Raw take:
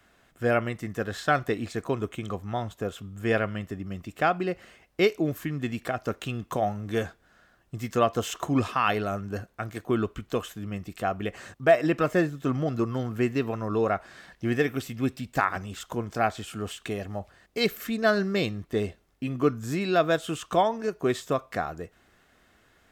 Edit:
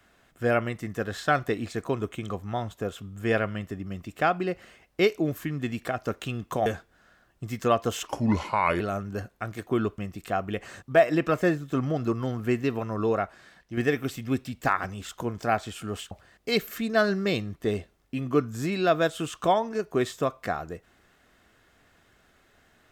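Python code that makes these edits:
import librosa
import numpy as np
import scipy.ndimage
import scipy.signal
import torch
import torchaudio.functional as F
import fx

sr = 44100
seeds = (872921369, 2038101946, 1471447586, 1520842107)

y = fx.edit(x, sr, fx.cut(start_s=6.66, length_s=0.31),
    fx.speed_span(start_s=8.38, length_s=0.6, speed=0.82),
    fx.cut(start_s=10.16, length_s=0.54),
    fx.fade_out_to(start_s=13.82, length_s=0.67, curve='qua', floor_db=-7.0),
    fx.cut(start_s=16.83, length_s=0.37), tone=tone)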